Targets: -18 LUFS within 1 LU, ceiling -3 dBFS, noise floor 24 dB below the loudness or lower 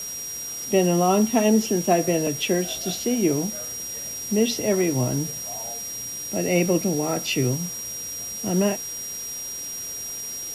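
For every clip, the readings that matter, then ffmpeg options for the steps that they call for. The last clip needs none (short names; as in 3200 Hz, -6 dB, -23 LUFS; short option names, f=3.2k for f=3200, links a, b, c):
steady tone 5700 Hz; tone level -31 dBFS; noise floor -33 dBFS; noise floor target -48 dBFS; loudness -24.0 LUFS; peak -7.0 dBFS; loudness target -18.0 LUFS
-> -af "bandreject=f=5.7k:w=30"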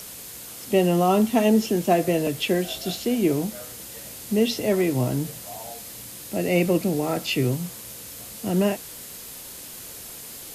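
steady tone none; noise floor -40 dBFS; noise floor target -47 dBFS
-> -af "afftdn=nr=7:nf=-40"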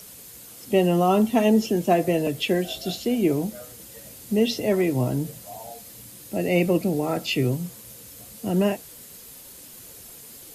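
noise floor -44 dBFS; noise floor target -48 dBFS
-> -af "afftdn=nr=6:nf=-44"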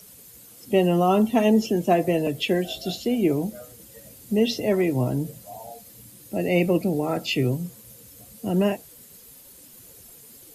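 noise floor -48 dBFS; loudness -23.5 LUFS; peak -7.5 dBFS; loudness target -18.0 LUFS
-> -af "volume=5.5dB,alimiter=limit=-3dB:level=0:latency=1"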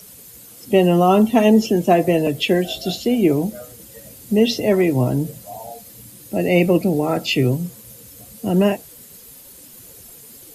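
loudness -18.0 LUFS; peak -3.0 dBFS; noise floor -43 dBFS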